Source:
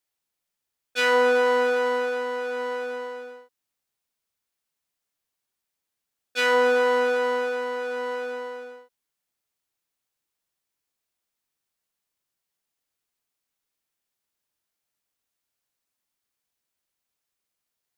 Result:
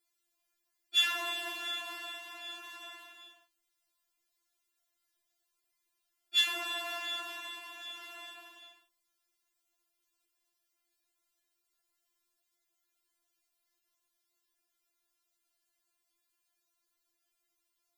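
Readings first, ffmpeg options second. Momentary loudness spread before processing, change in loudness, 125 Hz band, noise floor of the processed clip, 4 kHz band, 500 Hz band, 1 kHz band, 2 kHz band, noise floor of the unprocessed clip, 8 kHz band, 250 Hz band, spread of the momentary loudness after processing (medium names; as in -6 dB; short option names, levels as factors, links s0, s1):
16 LU, -9.5 dB, no reading, -82 dBFS, +2.5 dB, -29.0 dB, -17.0 dB, -12.5 dB, -84 dBFS, -2.0 dB, -20.5 dB, 20 LU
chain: -af "afftfilt=real='re*4*eq(mod(b,16),0)':imag='im*4*eq(mod(b,16),0)':win_size=2048:overlap=0.75,volume=1.58"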